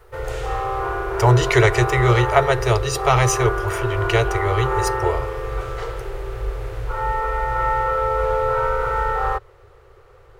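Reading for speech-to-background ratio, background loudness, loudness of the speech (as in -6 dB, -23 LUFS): 4.5 dB, -24.0 LUFS, -19.5 LUFS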